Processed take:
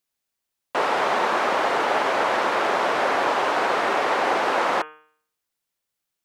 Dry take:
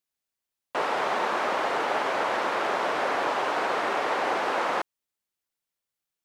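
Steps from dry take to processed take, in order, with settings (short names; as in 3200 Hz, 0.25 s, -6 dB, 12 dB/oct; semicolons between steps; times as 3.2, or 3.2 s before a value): de-hum 153.8 Hz, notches 22; gain +5 dB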